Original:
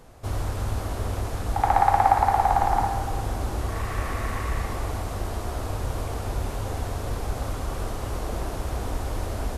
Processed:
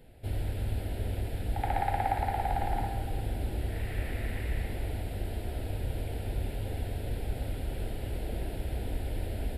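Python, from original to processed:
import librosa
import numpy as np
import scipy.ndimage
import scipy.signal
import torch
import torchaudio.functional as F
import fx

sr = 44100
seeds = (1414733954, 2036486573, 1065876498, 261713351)

y = fx.fixed_phaser(x, sr, hz=2700.0, stages=4)
y = y * librosa.db_to_amplitude(-4.0)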